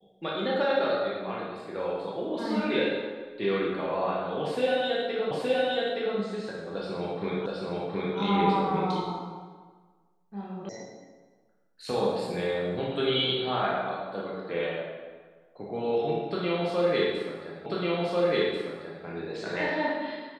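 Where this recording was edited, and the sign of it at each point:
5.31 repeat of the last 0.87 s
7.46 repeat of the last 0.72 s
10.69 sound cut off
17.66 repeat of the last 1.39 s

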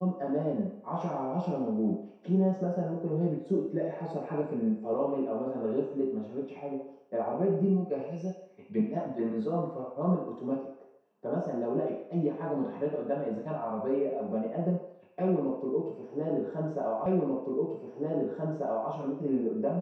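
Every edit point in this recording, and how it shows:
17.06 repeat of the last 1.84 s

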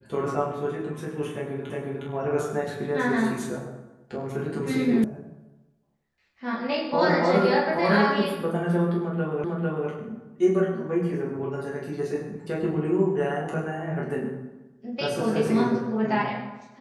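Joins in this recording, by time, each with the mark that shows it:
1.7 repeat of the last 0.36 s
5.04 sound cut off
9.44 repeat of the last 0.45 s

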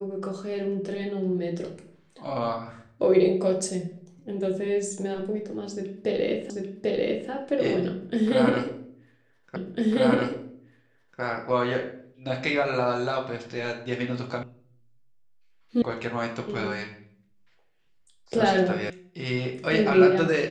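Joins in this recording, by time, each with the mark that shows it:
6.5 repeat of the last 0.79 s
9.56 repeat of the last 1.65 s
14.43 sound cut off
15.82 sound cut off
18.9 sound cut off

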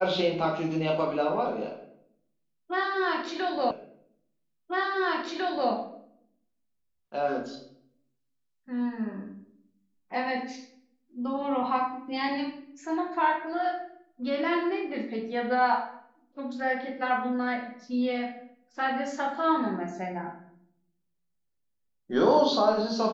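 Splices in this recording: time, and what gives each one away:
3.71 repeat of the last 2 s

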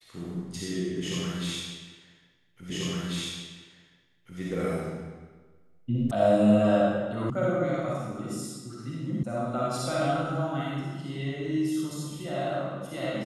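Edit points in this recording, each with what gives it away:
2.7 repeat of the last 1.69 s
6.11 sound cut off
7.3 sound cut off
9.23 sound cut off

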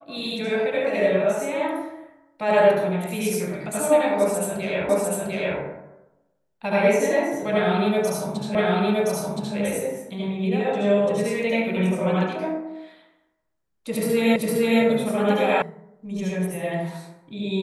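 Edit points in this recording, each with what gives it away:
4.89 repeat of the last 0.7 s
8.55 repeat of the last 1.02 s
14.36 repeat of the last 0.46 s
15.62 sound cut off

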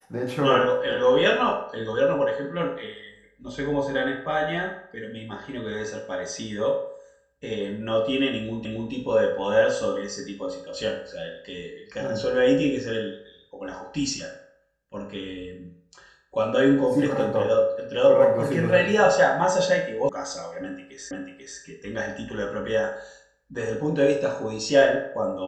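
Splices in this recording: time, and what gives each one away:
8.65 repeat of the last 0.27 s
20.09 sound cut off
21.11 repeat of the last 0.49 s

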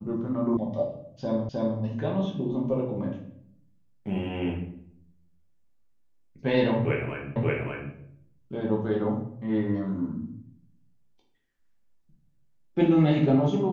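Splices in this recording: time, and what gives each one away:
0.57 sound cut off
1.49 repeat of the last 0.31 s
7.36 repeat of the last 0.58 s

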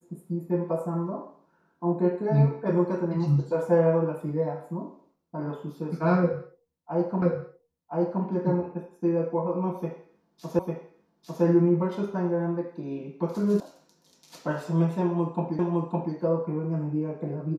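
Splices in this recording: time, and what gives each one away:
7.22 repeat of the last 1.02 s
10.59 repeat of the last 0.85 s
13.6 sound cut off
15.59 repeat of the last 0.56 s

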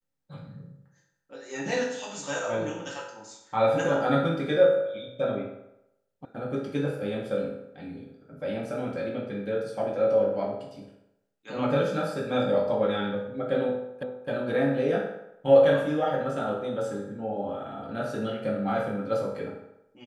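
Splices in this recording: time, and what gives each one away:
6.25 sound cut off
14.03 repeat of the last 0.26 s

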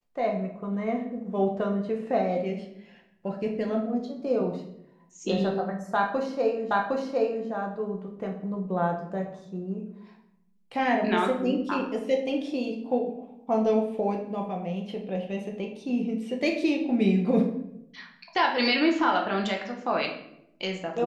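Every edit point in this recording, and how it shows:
6.71 repeat of the last 0.76 s

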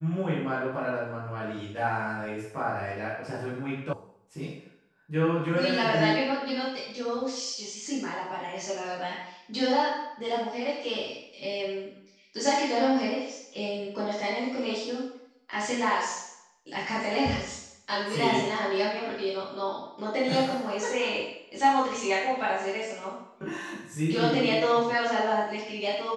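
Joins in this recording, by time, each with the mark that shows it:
3.93 sound cut off

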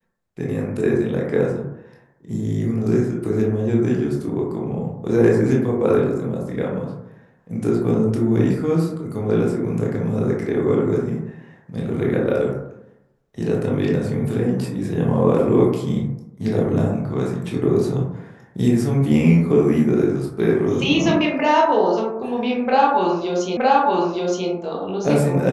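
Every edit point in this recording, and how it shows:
23.57 repeat of the last 0.92 s

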